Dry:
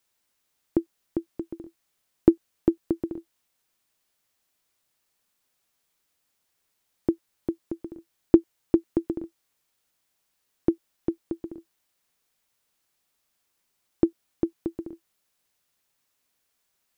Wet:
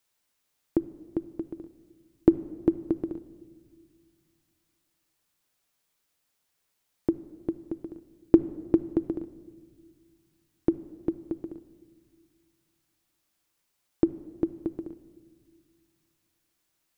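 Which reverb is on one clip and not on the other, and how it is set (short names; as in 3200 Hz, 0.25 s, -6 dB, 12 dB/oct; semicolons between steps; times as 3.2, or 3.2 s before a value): shoebox room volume 2400 m³, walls mixed, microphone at 0.4 m; gain -1.5 dB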